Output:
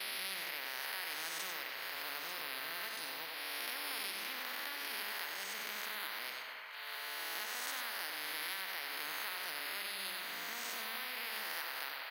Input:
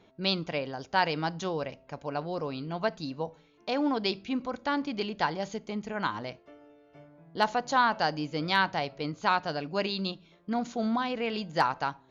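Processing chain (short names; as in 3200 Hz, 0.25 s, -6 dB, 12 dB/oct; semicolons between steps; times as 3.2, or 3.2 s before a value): spectral swells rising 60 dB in 1.34 s; careless resampling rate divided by 3×, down filtered, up zero stuff; ladder band-pass 2000 Hz, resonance 60%; thin delay 0.894 s, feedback 32%, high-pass 1400 Hz, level -17 dB; expander -55 dBFS; bell 2000 Hz +12.5 dB 0.33 oct; on a send at -11.5 dB: reverb RT60 1.5 s, pre-delay 35 ms; on the sum: compressor 2:1, threshold -43 dBFS, peak gain reduction 12 dB; short-mantissa float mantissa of 8-bit; outdoor echo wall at 16 m, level -8 dB; spectral compressor 4:1; gain +2.5 dB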